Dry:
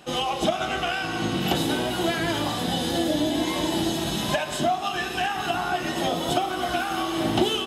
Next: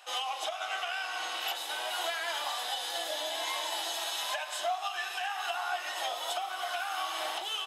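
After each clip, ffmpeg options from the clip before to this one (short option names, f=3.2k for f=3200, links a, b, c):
-af "highpass=f=710:w=0.5412,highpass=f=710:w=1.3066,alimiter=limit=-20dB:level=0:latency=1:release=448,volume=-3dB"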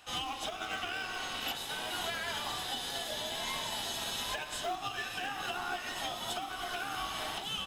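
-filter_complex "[0:a]lowshelf=f=470:g=-7.5,asplit=2[a][b];[b]acrusher=samples=41:mix=1:aa=0.000001,volume=-11dB[c];[a][c]amix=inputs=2:normalize=0,volume=-2dB"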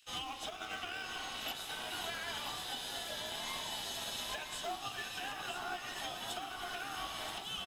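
-filter_complex "[0:a]acrossover=split=2300[a][b];[a]aeval=exprs='sgn(val(0))*max(abs(val(0))-0.00158,0)':c=same[c];[c][b]amix=inputs=2:normalize=0,aecho=1:1:978:0.376,volume=-4dB"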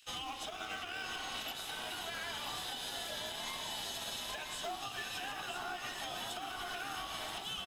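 -af "alimiter=level_in=10.5dB:limit=-24dB:level=0:latency=1:release=140,volume=-10.5dB,volume=3.5dB"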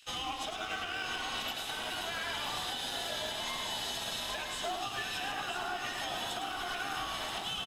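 -filter_complex "[0:a]highshelf=f=9.6k:g=-5.5,asplit=2[a][b];[b]adelay=105,volume=-6dB,highshelf=f=4k:g=-2.36[c];[a][c]amix=inputs=2:normalize=0,volume=4dB"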